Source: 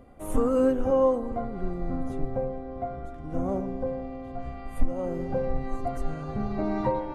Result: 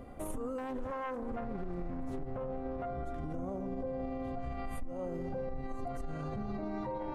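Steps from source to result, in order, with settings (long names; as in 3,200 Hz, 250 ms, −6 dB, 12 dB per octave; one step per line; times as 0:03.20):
0:00.58–0:02.86: phase distortion by the signal itself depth 0.55 ms
downward compressor 6 to 1, threshold −32 dBFS, peak gain reduction 16 dB
brickwall limiter −34 dBFS, peak gain reduction 10 dB
level +3.5 dB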